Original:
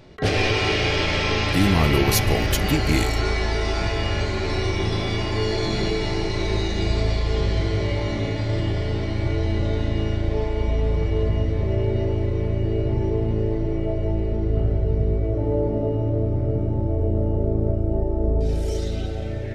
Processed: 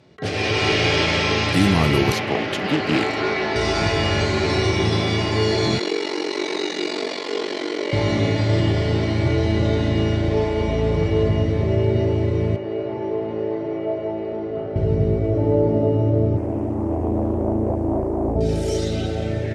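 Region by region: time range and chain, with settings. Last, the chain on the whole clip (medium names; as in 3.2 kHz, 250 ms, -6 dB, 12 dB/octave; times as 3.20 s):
2.12–3.56 s: high-pass 63 Hz 24 dB/octave + three-band isolator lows -16 dB, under 170 Hz, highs -17 dB, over 4 kHz + loudspeaker Doppler distortion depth 0.35 ms
5.78–7.93 s: steep high-pass 270 Hz + peaking EQ 690 Hz -7 dB 0.24 oct + ring modulator 23 Hz
12.56–14.76 s: band-pass 690–6700 Hz + tilt EQ -4 dB/octave
16.37–18.36 s: peaking EQ 12 kHz +9.5 dB 1.6 oct + static phaser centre 720 Hz, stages 8 + loudspeaker Doppler distortion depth 0.82 ms
whole clip: Chebyshev band-pass 120–9600 Hz, order 2; level rider gain up to 11.5 dB; trim -4 dB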